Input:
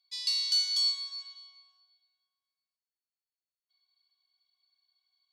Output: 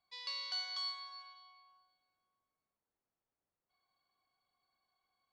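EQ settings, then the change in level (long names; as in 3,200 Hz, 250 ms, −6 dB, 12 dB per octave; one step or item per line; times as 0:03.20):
low-pass filter 1,000 Hz 12 dB per octave
+13.5 dB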